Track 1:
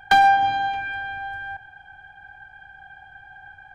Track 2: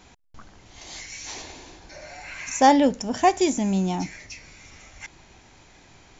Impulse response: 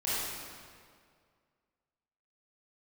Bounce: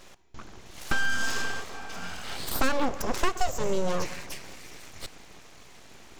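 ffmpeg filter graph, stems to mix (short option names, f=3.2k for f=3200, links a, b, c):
-filter_complex "[0:a]lowpass=f=550:t=q:w=6.6,adelay=800,volume=-1.5dB[a];[1:a]equalizer=f=360:w=6.9:g=8,volume=2.5dB,asplit=2[b][c];[c]volume=-23dB[d];[2:a]atrim=start_sample=2205[e];[d][e]afir=irnorm=-1:irlink=0[f];[a][b][f]amix=inputs=3:normalize=0,aeval=exprs='abs(val(0))':c=same,acompressor=threshold=-20dB:ratio=5"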